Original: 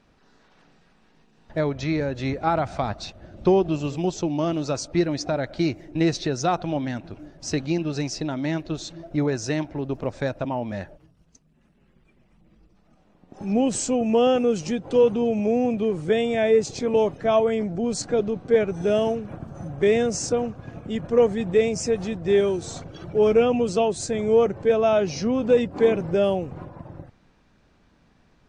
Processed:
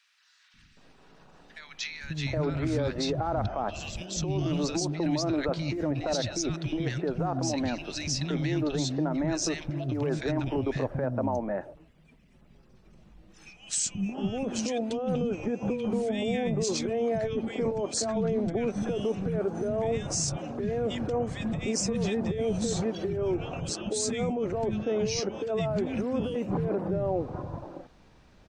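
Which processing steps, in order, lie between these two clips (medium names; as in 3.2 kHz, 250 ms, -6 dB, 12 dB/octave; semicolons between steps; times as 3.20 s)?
compressor with a negative ratio -26 dBFS, ratio -1; three bands offset in time highs, lows, mids 540/770 ms, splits 230/1600 Hz; peak limiter -19.5 dBFS, peak gain reduction 7.5 dB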